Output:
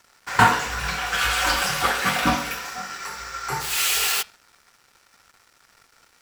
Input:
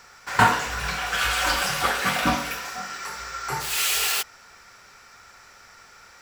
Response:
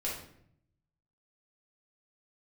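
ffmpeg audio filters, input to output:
-af "bandreject=frequency=610:width=13,bandreject=frequency=214.4:width_type=h:width=4,bandreject=frequency=428.8:width_type=h:width=4,bandreject=frequency=643.2:width_type=h:width=4,bandreject=frequency=857.6:width_type=h:width=4,bandreject=frequency=1072:width_type=h:width=4,bandreject=frequency=1286.4:width_type=h:width=4,bandreject=frequency=1500.8:width_type=h:width=4,bandreject=frequency=1715.2:width_type=h:width=4,bandreject=frequency=1929.6:width_type=h:width=4,bandreject=frequency=2144:width_type=h:width=4,bandreject=frequency=2358.4:width_type=h:width=4,bandreject=frequency=2572.8:width_type=h:width=4,bandreject=frequency=2787.2:width_type=h:width=4,bandreject=frequency=3001.6:width_type=h:width=4,bandreject=frequency=3216:width_type=h:width=4,bandreject=frequency=3430.4:width_type=h:width=4,bandreject=frequency=3644.8:width_type=h:width=4,bandreject=frequency=3859.2:width_type=h:width=4,bandreject=frequency=4073.6:width_type=h:width=4,bandreject=frequency=4288:width_type=h:width=4,bandreject=frequency=4502.4:width_type=h:width=4,bandreject=frequency=4716.8:width_type=h:width=4,bandreject=frequency=4931.2:width_type=h:width=4,bandreject=frequency=5145.6:width_type=h:width=4,bandreject=frequency=5360:width_type=h:width=4,aeval=exprs='sgn(val(0))*max(abs(val(0))-0.00376,0)':channel_layout=same,volume=2dB"

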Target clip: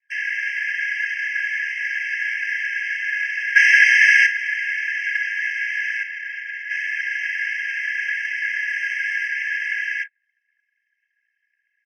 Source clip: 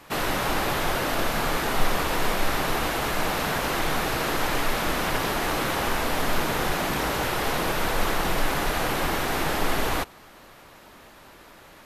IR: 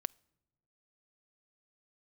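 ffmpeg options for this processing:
-filter_complex "[0:a]aeval=exprs='val(0)+0.02*(sin(2*PI*60*n/s)+sin(2*PI*2*60*n/s)/2+sin(2*PI*3*60*n/s)/3+sin(2*PI*4*60*n/s)/4+sin(2*PI*5*60*n/s)/5)':channel_layout=same,acrossover=split=690|2900[link_01][link_02][link_03];[link_03]acompressor=threshold=-48dB:ratio=12[link_04];[link_01][link_02][link_04]amix=inputs=3:normalize=0,highpass=frequency=45:width=0.5412,highpass=frequency=45:width=1.3066,bass=frequency=250:gain=4,treble=frequency=4000:gain=8,asplit=3[link_05][link_06][link_07];[link_05]afade=type=out:start_time=3.55:duration=0.02[link_08];[link_06]asplit=2[link_09][link_10];[link_10]highpass=frequency=720:poles=1,volume=36dB,asoftclip=type=tanh:threshold=-11dB[link_11];[link_09][link_11]amix=inputs=2:normalize=0,lowpass=frequency=4700:poles=1,volume=-6dB,afade=type=in:start_time=3.55:duration=0.02,afade=type=out:start_time=4.25:duration=0.02[link_12];[link_07]afade=type=in:start_time=4.25:duration=0.02[link_13];[link_08][link_12][link_13]amix=inputs=3:normalize=0,asettb=1/sr,asplit=3[link_14][link_15][link_16];[link_14]atrim=end=8.684[link_17];[link_15]atrim=start=8.68:end=9.28,asetpts=PTS-STARTPTS,afade=type=in:duration=0.004:curve=qsin,afade=type=out:start_time=0.596:duration=0.004:curve=qsin,acrusher=bits=4:mode=log:mix=0:aa=0.000001[link_18];[link_16]atrim=start=9.276[link_19];[link_17][link_18]acrossfade=duration=0.004:curve1=hsin:curve2=qsin[link_20];[link_20][link_19]acrossfade=duration=0.004:curve1=qsin:curve2=hsin,aecho=1:1:1.9:0.68,asettb=1/sr,asplit=3[link_21][link_22][link_23];[link_21]atrim=end=6.024[link_24];[link_22]atrim=start=6.02:end=6.7,asetpts=PTS-STARTPTS,afade=type=in:duration=0.004:curve=qsin,afade=type=out:start_time=0.676:duration=0.004:curve=qsin,acrossover=split=130[link_25][link_26];[link_26]acompressor=threshold=-28dB:ratio=4[link_27];[link_25][link_27]amix=inputs=2:normalize=0[link_28];[link_23]atrim=start=6.696[link_29];[link_24][link_28]acrossfade=duration=0.004:curve1=hsin:curve2=qsin[link_30];[link_30][link_29]acrossfade=duration=0.004:curve1=qsin:curve2=hsin,asplit=2[link_31][link_32];[link_32]aecho=0:1:30|55:0.299|0.2[link_33];[link_31][link_33]amix=inputs=2:normalize=0,anlmdn=25.1,firequalizer=gain_entry='entry(290,0);entry(540,-27);entry(960,12);entry(1700,13);entry(3300,-2);entry(6600,0);entry(9900,-20);entry(14000,-27)':delay=0.05:min_phase=1,afftfilt=real='re*eq(mod(floor(b*sr/1024/1600),2),1)':imag='im*eq(mod(floor(b*sr/1024/1600),2),1)':win_size=1024:overlap=0.75,volume=-1dB"

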